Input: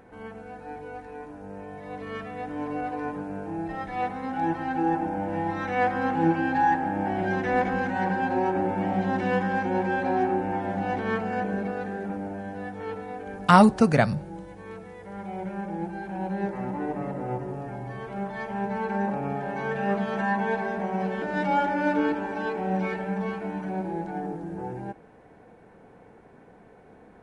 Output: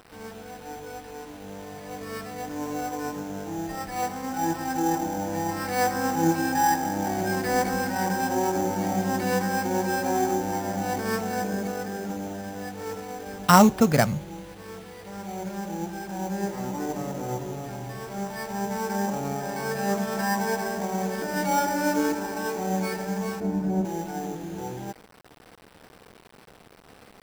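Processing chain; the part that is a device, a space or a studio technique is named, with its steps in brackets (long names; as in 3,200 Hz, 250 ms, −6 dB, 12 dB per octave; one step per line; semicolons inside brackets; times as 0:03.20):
early 8-bit sampler (sample-rate reduction 6,700 Hz, jitter 0%; bit reduction 8 bits)
0:23.40–0:23.85: tilt shelving filter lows +8.5 dB, about 680 Hz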